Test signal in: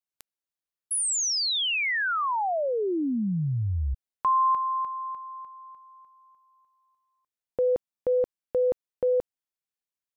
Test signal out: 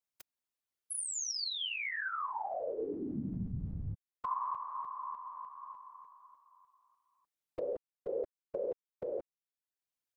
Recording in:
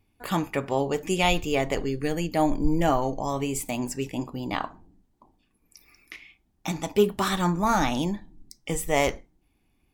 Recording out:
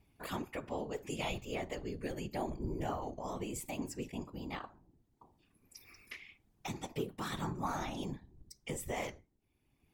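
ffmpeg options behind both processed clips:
ffmpeg -i in.wav -af "acompressor=threshold=-44dB:ratio=2:attack=14:release=581:detection=rms,afftfilt=real='hypot(re,im)*cos(2*PI*random(0))':imag='hypot(re,im)*sin(2*PI*random(1))':win_size=512:overlap=0.75,volume=5dB" out.wav

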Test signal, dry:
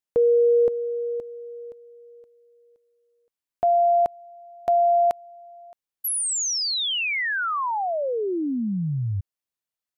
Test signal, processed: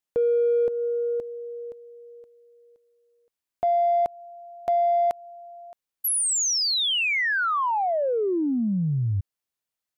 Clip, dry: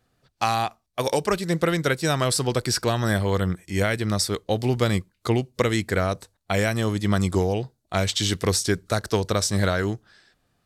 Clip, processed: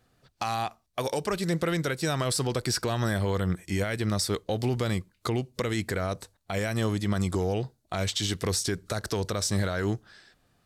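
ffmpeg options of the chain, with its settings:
ffmpeg -i in.wav -filter_complex "[0:a]asplit=2[link_01][link_02];[link_02]asoftclip=type=tanh:threshold=-24.5dB,volume=-12dB[link_03];[link_01][link_03]amix=inputs=2:normalize=0,alimiter=limit=-18dB:level=0:latency=1:release=165" out.wav

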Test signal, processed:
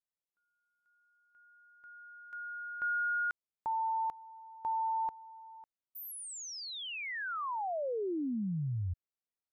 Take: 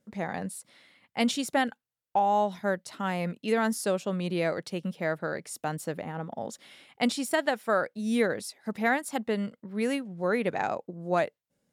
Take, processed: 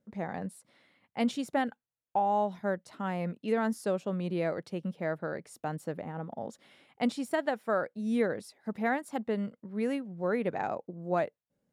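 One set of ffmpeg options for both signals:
ffmpeg -i in.wav -af "highshelf=frequency=2100:gain=-10.5,volume=-2dB" out.wav

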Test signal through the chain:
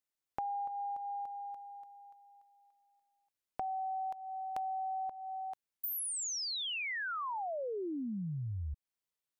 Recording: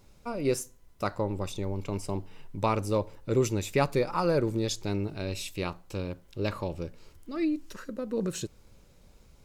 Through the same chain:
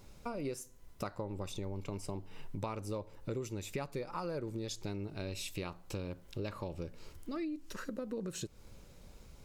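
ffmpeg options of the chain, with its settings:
ffmpeg -i in.wav -af "acompressor=threshold=-39dB:ratio=6,volume=2dB" out.wav

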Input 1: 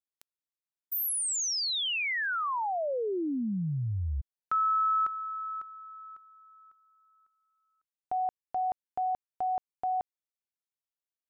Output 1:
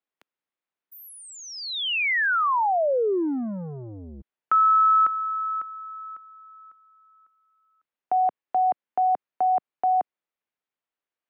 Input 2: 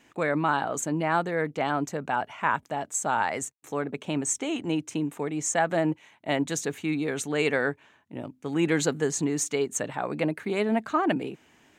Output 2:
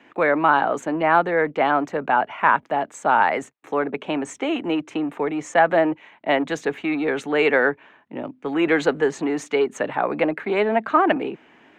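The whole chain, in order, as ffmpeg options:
ffmpeg -i in.wav -filter_complex "[0:a]acrossover=split=330[link_01][link_02];[link_01]asoftclip=type=tanh:threshold=-37dB[link_03];[link_03][link_02]amix=inputs=2:normalize=0,acontrast=35,acrossover=split=180 3200:gain=0.2 1 0.0708[link_04][link_05][link_06];[link_04][link_05][link_06]amix=inputs=3:normalize=0,volume=3.5dB" out.wav

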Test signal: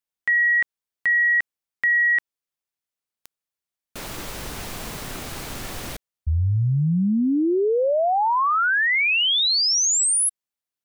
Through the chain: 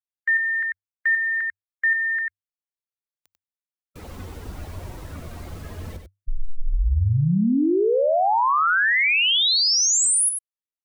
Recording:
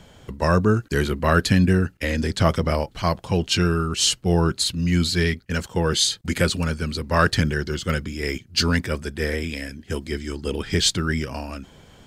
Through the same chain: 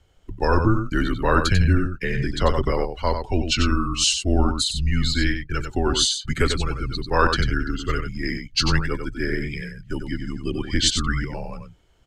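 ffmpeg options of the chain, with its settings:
ffmpeg -i in.wav -af "afftdn=noise_reduction=15:noise_floor=-32,aecho=1:1:94:0.447,afreqshift=-100" out.wav

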